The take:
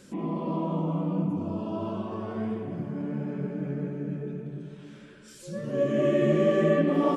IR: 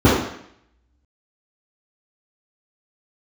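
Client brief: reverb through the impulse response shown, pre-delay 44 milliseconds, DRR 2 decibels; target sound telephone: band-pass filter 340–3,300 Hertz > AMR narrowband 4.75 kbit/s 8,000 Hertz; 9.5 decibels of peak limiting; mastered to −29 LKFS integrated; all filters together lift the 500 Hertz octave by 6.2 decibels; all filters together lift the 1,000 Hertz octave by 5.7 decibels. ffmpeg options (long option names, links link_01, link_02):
-filter_complex "[0:a]equalizer=frequency=500:width_type=o:gain=7,equalizer=frequency=1000:width_type=o:gain=5,alimiter=limit=-15.5dB:level=0:latency=1,asplit=2[link_01][link_02];[1:a]atrim=start_sample=2205,adelay=44[link_03];[link_02][link_03]afir=irnorm=-1:irlink=0,volume=-28dB[link_04];[link_01][link_04]amix=inputs=2:normalize=0,highpass=340,lowpass=3300,volume=-4dB" -ar 8000 -c:a libopencore_amrnb -b:a 4750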